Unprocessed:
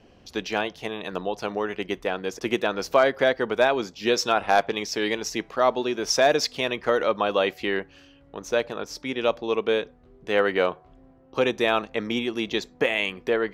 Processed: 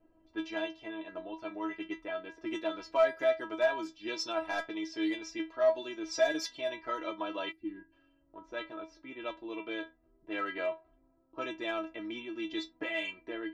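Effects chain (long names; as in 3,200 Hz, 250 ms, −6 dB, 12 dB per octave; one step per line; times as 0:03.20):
stiff-string resonator 320 Hz, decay 0.21 s, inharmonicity 0.002
gain on a spectral selection 0:07.52–0:07.92, 370–8,200 Hz −20 dB
in parallel at −7 dB: soft clipping −29 dBFS, distortion −9 dB
on the sum: low-pass that shuts in the quiet parts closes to 1,100 Hz, open at −28.5 dBFS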